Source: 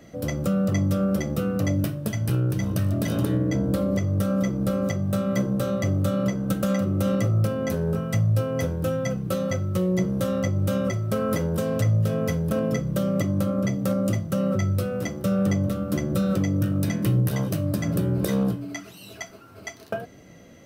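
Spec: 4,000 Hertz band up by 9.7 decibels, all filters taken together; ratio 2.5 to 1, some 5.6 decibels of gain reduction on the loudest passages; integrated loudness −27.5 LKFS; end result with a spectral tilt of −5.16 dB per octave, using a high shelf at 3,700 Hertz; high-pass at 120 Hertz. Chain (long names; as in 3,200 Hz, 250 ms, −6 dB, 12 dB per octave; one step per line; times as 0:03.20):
high-pass filter 120 Hz
high-shelf EQ 3,700 Hz +7.5 dB
parametric band 4,000 Hz +7.5 dB
downward compressor 2.5 to 1, threshold −28 dBFS
level +2.5 dB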